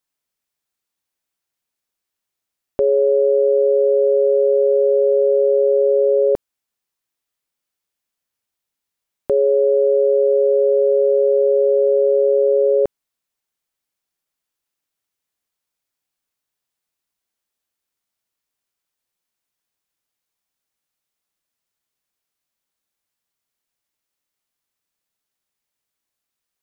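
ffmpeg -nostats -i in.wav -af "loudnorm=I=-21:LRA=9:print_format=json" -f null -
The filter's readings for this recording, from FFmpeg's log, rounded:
"input_i" : "-15.7",
"input_tp" : "-8.6",
"input_lra" : "9.1",
"input_thresh" : "-25.8",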